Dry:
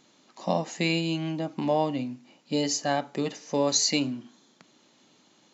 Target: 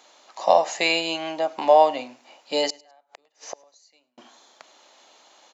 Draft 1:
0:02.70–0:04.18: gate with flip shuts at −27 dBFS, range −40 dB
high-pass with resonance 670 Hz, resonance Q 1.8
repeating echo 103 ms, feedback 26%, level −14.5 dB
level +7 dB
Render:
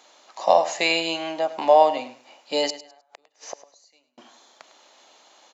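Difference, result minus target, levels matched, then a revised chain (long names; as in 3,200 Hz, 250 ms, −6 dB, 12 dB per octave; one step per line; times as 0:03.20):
echo-to-direct +10 dB
0:02.70–0:04.18: gate with flip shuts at −27 dBFS, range −40 dB
high-pass with resonance 670 Hz, resonance Q 1.8
repeating echo 103 ms, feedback 26%, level −24.5 dB
level +7 dB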